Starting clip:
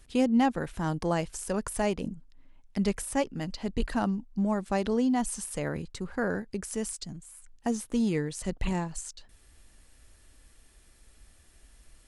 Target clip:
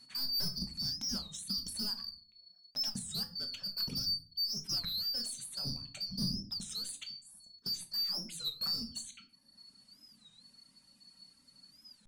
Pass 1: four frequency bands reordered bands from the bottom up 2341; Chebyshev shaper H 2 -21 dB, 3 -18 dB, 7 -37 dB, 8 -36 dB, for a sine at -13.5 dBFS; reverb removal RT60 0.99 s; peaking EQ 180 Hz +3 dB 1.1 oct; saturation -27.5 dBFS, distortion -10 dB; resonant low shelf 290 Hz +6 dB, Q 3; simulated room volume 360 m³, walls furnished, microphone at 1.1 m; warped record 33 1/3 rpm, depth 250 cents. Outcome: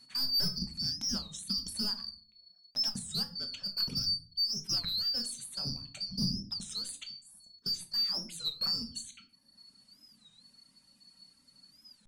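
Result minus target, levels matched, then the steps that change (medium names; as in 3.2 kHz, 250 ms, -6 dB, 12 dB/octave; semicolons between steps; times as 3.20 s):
saturation: distortion -4 dB
change: saturation -33.5 dBFS, distortion -6 dB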